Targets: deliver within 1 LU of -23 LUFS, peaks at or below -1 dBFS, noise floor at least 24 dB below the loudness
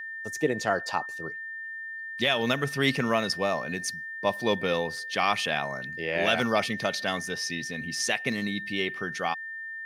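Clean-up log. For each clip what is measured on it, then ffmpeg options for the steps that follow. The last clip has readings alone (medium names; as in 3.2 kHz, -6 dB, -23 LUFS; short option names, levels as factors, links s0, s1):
steady tone 1.8 kHz; tone level -35 dBFS; loudness -28.5 LUFS; peak level -10.0 dBFS; loudness target -23.0 LUFS
-> -af "bandreject=f=1800:w=30"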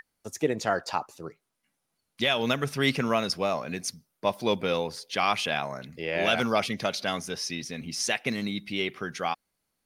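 steady tone not found; loudness -28.5 LUFS; peak level -10.5 dBFS; loudness target -23.0 LUFS
-> -af "volume=1.88"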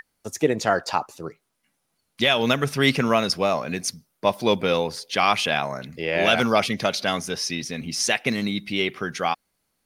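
loudness -23.0 LUFS; peak level -5.0 dBFS; noise floor -75 dBFS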